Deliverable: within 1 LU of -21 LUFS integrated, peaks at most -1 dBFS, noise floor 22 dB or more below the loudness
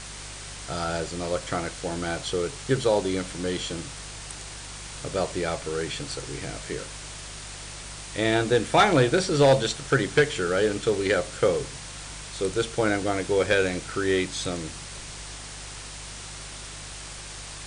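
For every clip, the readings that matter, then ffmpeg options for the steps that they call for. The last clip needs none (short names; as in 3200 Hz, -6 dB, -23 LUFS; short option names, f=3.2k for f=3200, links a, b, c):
hum 50 Hz; harmonics up to 150 Hz; hum level -42 dBFS; noise floor -40 dBFS; noise floor target -48 dBFS; loudness -25.5 LUFS; peak -10.5 dBFS; loudness target -21.0 LUFS
-> -af "bandreject=f=50:t=h:w=4,bandreject=f=100:t=h:w=4,bandreject=f=150:t=h:w=4"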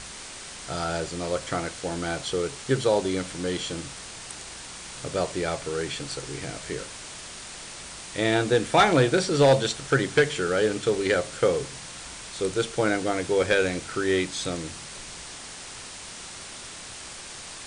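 hum none; noise floor -41 dBFS; noise floor target -48 dBFS
-> -af "afftdn=nr=7:nf=-41"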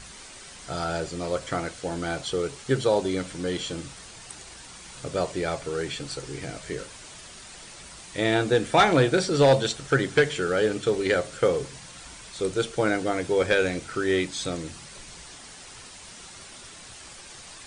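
noise floor -45 dBFS; noise floor target -48 dBFS
-> -af "afftdn=nr=6:nf=-45"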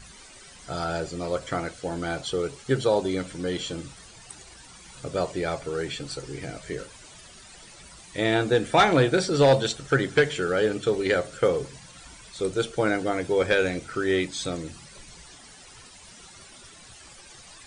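noise floor -49 dBFS; loudness -25.5 LUFS; peak -10.5 dBFS; loudness target -21.0 LUFS
-> -af "volume=4.5dB"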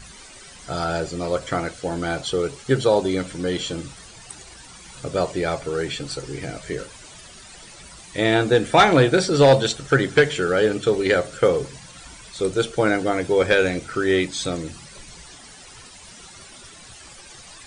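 loudness -21.0 LUFS; peak -6.0 dBFS; noise floor -44 dBFS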